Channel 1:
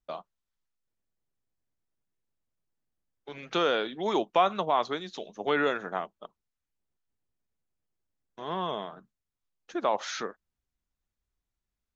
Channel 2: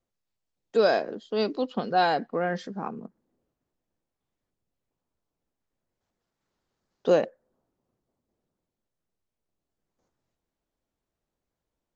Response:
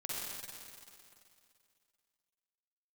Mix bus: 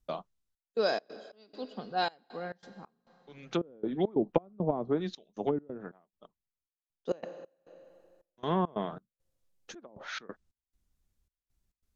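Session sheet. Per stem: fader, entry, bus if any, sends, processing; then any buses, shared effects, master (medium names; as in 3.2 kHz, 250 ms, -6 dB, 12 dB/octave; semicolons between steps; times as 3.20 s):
-1.0 dB, 0.00 s, no send, low-pass that closes with the level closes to 360 Hz, closed at -23 dBFS; bass shelf 420 Hz +12 dB; auto duck -24 dB, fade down 1.90 s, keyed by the second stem
-12.0 dB, 0.00 s, send -15 dB, three bands expanded up and down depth 70%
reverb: on, RT60 2.5 s, pre-delay 43 ms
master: treble shelf 3.7 kHz +8.5 dB; trance gate "xxxxx..xx.xx.." 137 bpm -24 dB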